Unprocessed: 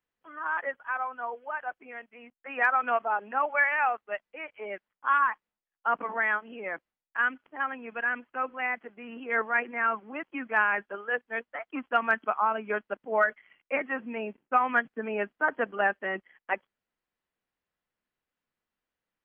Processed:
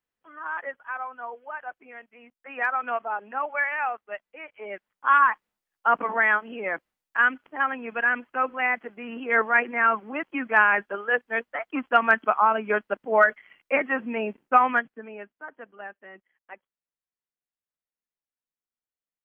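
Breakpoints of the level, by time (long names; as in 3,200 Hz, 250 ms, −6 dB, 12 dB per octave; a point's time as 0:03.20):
0:04.49 −1.5 dB
0:05.16 +6 dB
0:14.65 +6 dB
0:14.99 −6 dB
0:15.43 −14 dB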